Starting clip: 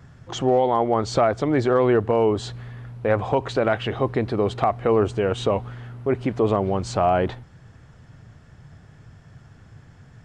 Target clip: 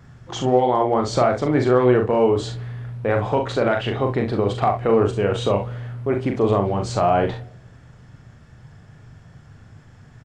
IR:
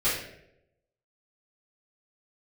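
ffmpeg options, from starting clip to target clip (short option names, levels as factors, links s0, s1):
-filter_complex "[0:a]aecho=1:1:40|66:0.562|0.266,asplit=2[s0][s1];[1:a]atrim=start_sample=2205[s2];[s1][s2]afir=irnorm=-1:irlink=0,volume=0.0376[s3];[s0][s3]amix=inputs=2:normalize=0"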